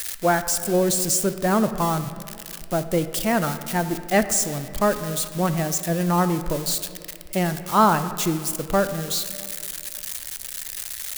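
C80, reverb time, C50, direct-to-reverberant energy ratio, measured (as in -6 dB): 12.0 dB, 2.3 s, 11.0 dB, 10.0 dB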